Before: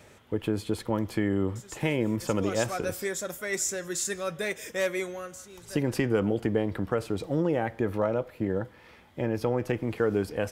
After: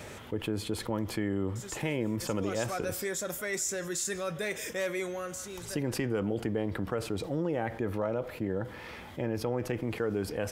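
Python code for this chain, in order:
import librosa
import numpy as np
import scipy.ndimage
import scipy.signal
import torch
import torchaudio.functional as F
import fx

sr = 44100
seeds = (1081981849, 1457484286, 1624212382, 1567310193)

y = fx.env_flatten(x, sr, amount_pct=50)
y = y * librosa.db_to_amplitude(-7.0)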